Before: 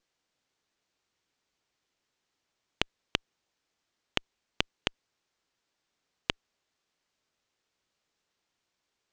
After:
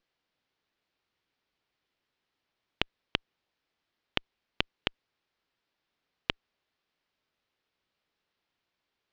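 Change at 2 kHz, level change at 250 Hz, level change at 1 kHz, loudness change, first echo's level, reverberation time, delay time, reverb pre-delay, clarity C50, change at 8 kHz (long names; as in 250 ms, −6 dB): 0.0 dB, −0.5 dB, −0.5 dB, −0.5 dB, no echo audible, no reverb audible, no echo audible, no reverb audible, no reverb audible, −12.0 dB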